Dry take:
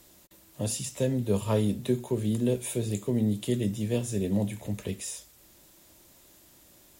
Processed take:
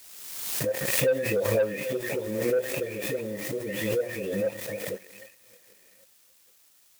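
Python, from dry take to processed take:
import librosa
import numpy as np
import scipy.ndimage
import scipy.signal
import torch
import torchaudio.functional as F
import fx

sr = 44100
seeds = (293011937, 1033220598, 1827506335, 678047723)

y = fx.spec_delay(x, sr, highs='late', ms=809)
y = fx.low_shelf(y, sr, hz=460.0, db=-5.0)
y = fx.hum_notches(y, sr, base_hz=60, count=6)
y = np.where(np.abs(y) >= 10.0 ** (-46.5 / 20.0), y, 0.0)
y = fx.formant_cascade(y, sr, vowel='e')
y = fx.dmg_noise_colour(y, sr, seeds[0], colour='white', level_db=-77.0)
y = scipy.signal.sosfilt(scipy.signal.butter(2, 120.0, 'highpass', fs=sr, output='sos'), y)
y = fx.high_shelf(y, sr, hz=2300.0, db=11.5)
y = fx.echo_feedback(y, sr, ms=781, feedback_pct=35, wet_db=-22.5)
y = fx.leveller(y, sr, passes=2)
y = fx.pre_swell(y, sr, db_per_s=38.0)
y = F.gain(torch.from_numpy(y), 6.5).numpy()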